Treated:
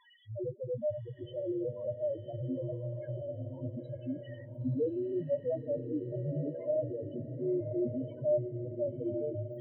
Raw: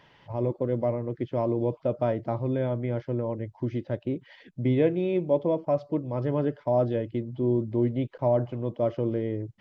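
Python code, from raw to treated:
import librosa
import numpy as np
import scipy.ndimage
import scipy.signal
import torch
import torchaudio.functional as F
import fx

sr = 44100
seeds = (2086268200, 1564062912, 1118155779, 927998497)

y = x + 0.5 * 10.0 ** (-26.0 / 20.0) * np.diff(np.sign(x), prepend=np.sign(x[:1]))
y = fx.bass_treble(y, sr, bass_db=1, treble_db=-7)
y = fx.spec_topn(y, sr, count=1)
y = fx.doubler(y, sr, ms=20.0, db=-13.0)
y = fx.echo_diffused(y, sr, ms=1036, feedback_pct=44, wet_db=-7.5)
y = F.gain(torch.from_numpy(y), -1.5).numpy()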